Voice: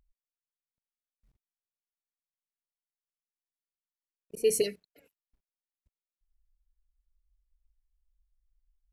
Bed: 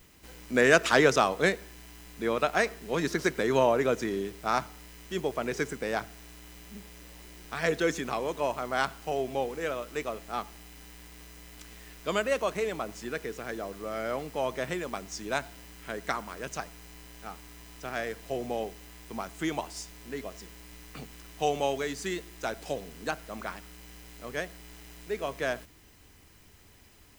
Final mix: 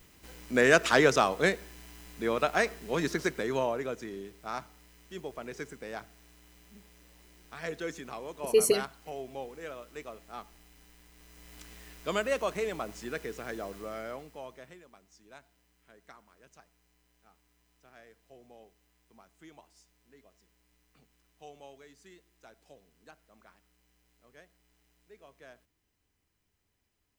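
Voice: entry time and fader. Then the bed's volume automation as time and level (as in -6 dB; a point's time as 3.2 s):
4.10 s, +2.5 dB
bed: 3.05 s -1 dB
3.94 s -9.5 dB
11.13 s -9.5 dB
11.56 s -2 dB
13.78 s -2 dB
14.9 s -22 dB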